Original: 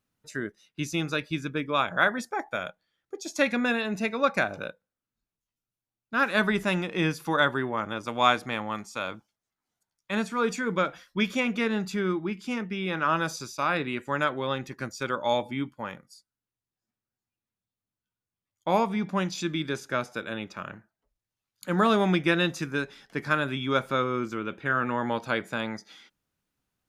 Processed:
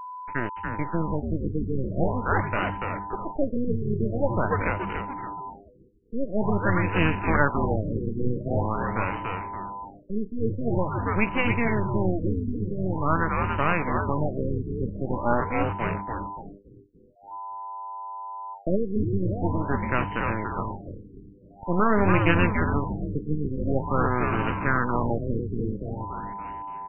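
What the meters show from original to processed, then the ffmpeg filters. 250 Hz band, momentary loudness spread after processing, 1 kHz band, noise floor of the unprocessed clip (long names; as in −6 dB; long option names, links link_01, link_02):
+2.5 dB, 13 LU, +2.0 dB, below −85 dBFS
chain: -filter_complex "[0:a]highpass=74,highshelf=frequency=7700:gain=6.5,asplit=2[link_01][link_02];[link_02]acompressor=threshold=-32dB:ratio=6,volume=-2dB[link_03];[link_01][link_03]amix=inputs=2:normalize=0,aeval=exprs='max(val(0),0)':channel_layout=same,acrusher=bits=5:mix=0:aa=0.000001,aeval=exprs='val(0)+0.0126*sin(2*PI*1000*n/s)':channel_layout=same,asplit=2[link_04][link_05];[link_05]asplit=6[link_06][link_07][link_08][link_09][link_10][link_11];[link_06]adelay=286,afreqshift=-100,volume=-4dB[link_12];[link_07]adelay=572,afreqshift=-200,volume=-11.1dB[link_13];[link_08]adelay=858,afreqshift=-300,volume=-18.3dB[link_14];[link_09]adelay=1144,afreqshift=-400,volume=-25.4dB[link_15];[link_10]adelay=1430,afreqshift=-500,volume=-32.5dB[link_16];[link_11]adelay=1716,afreqshift=-600,volume=-39.7dB[link_17];[link_12][link_13][link_14][link_15][link_16][link_17]amix=inputs=6:normalize=0[link_18];[link_04][link_18]amix=inputs=2:normalize=0,afftfilt=real='re*lt(b*sr/1024,470*pow(3100/470,0.5+0.5*sin(2*PI*0.46*pts/sr)))':imag='im*lt(b*sr/1024,470*pow(3100/470,0.5+0.5*sin(2*PI*0.46*pts/sr)))':win_size=1024:overlap=0.75,volume=3dB"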